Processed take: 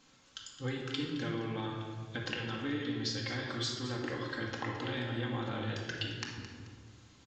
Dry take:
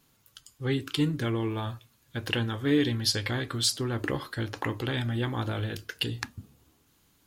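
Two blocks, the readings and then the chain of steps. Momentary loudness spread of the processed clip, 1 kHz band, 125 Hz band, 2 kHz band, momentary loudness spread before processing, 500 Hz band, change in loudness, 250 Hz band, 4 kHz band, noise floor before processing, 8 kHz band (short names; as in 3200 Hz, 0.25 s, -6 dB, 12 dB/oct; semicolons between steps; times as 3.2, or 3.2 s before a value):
13 LU, -4.0 dB, -8.5 dB, -4.5 dB, 12 LU, -7.0 dB, -7.5 dB, -7.5 dB, -7.0 dB, -67 dBFS, -11.5 dB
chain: low shelf 170 Hz -9.5 dB; compressor 6:1, threshold -41 dBFS, peak gain reduction 18.5 dB; feedback echo 0.217 s, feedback 33%, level -12.5 dB; shoebox room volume 1500 m³, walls mixed, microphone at 2.1 m; downsampling 16000 Hz; gain +3 dB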